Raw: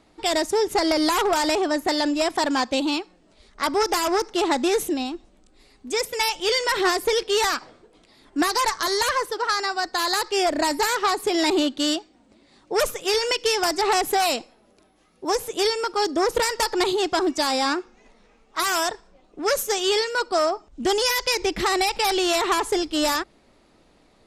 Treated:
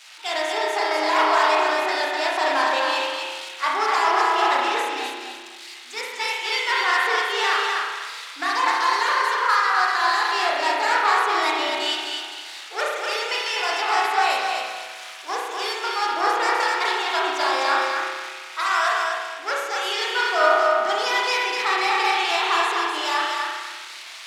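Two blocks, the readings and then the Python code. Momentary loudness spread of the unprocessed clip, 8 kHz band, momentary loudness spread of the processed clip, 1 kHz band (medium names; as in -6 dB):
6 LU, -6.5 dB, 12 LU, +4.5 dB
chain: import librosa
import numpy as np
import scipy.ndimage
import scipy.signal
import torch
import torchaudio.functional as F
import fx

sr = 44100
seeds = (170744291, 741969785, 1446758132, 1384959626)

p1 = x + 0.5 * 10.0 ** (-19.0 / 20.0) * np.diff(np.sign(x), prepend=np.sign(x[:1]))
p2 = scipy.signal.sosfilt(scipy.signal.butter(2, 1100.0, 'highpass', fs=sr, output='sos'), p1)
p3 = fx.rider(p2, sr, range_db=3, speed_s=0.5)
p4 = p2 + (p3 * 10.0 ** (2.0 / 20.0))
p5 = fx.spacing_loss(p4, sr, db_at_10k=25)
p6 = fx.echo_feedback(p5, sr, ms=251, feedback_pct=35, wet_db=-3.5)
p7 = fx.rev_spring(p6, sr, rt60_s=1.4, pass_ms=(32,), chirp_ms=35, drr_db=-3.0)
p8 = fx.band_widen(p7, sr, depth_pct=40)
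y = p8 * 10.0 ** (-2.0 / 20.0)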